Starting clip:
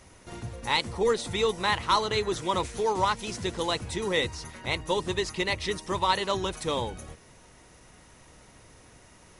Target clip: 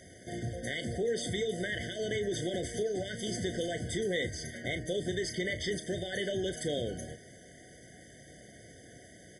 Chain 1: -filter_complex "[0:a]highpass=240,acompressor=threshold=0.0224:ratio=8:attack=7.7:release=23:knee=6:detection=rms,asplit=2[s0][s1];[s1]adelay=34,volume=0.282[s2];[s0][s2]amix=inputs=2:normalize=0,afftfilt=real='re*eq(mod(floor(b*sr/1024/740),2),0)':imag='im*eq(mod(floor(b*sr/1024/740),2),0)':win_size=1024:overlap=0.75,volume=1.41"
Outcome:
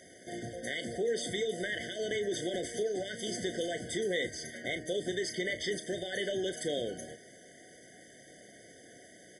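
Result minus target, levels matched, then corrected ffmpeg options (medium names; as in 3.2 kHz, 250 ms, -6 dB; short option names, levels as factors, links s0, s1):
125 Hz band -7.5 dB
-filter_complex "[0:a]highpass=100,acompressor=threshold=0.0224:ratio=8:attack=7.7:release=23:knee=6:detection=rms,asplit=2[s0][s1];[s1]adelay=34,volume=0.282[s2];[s0][s2]amix=inputs=2:normalize=0,afftfilt=real='re*eq(mod(floor(b*sr/1024/740),2),0)':imag='im*eq(mod(floor(b*sr/1024/740),2),0)':win_size=1024:overlap=0.75,volume=1.41"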